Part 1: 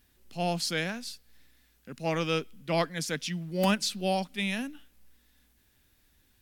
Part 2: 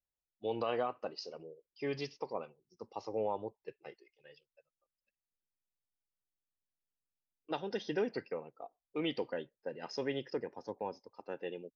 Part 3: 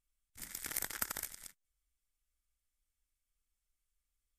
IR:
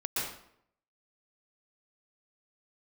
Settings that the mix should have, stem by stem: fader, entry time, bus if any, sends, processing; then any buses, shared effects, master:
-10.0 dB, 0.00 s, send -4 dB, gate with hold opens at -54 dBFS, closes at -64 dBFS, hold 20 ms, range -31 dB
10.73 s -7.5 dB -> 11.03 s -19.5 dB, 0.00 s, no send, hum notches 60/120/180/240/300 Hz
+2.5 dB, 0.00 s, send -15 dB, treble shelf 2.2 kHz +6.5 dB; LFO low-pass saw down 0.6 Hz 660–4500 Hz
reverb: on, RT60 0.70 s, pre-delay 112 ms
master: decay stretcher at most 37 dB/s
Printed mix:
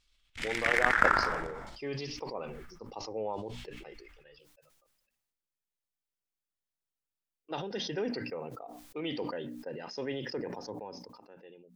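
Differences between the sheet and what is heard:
stem 1: muted; stem 2 -7.5 dB -> -1.0 dB; stem 3 +2.5 dB -> +9.5 dB

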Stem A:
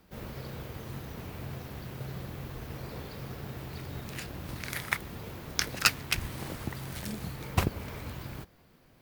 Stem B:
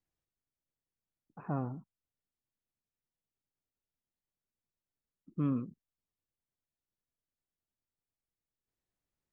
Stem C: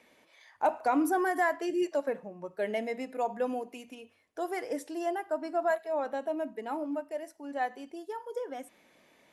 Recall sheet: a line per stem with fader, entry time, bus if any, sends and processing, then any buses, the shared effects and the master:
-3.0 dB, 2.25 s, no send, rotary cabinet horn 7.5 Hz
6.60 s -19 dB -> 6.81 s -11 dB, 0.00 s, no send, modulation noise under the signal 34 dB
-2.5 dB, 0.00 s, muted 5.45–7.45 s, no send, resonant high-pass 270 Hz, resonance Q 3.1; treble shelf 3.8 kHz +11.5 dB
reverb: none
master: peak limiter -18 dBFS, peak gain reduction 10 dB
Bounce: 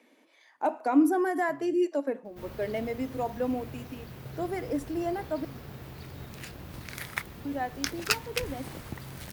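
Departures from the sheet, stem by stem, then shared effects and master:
stem A: missing rotary cabinet horn 7.5 Hz; stem C: missing treble shelf 3.8 kHz +11.5 dB; master: missing peak limiter -18 dBFS, peak gain reduction 10 dB

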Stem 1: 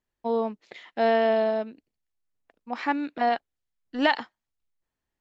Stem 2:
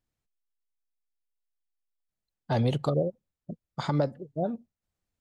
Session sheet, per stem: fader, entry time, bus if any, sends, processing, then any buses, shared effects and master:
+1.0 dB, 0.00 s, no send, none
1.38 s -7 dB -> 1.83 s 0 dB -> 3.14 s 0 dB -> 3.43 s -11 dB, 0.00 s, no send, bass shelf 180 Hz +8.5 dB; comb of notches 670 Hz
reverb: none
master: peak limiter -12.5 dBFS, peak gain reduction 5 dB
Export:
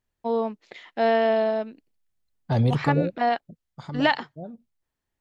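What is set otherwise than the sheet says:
stem 2: missing comb of notches 670 Hz; master: missing peak limiter -12.5 dBFS, peak gain reduction 5 dB

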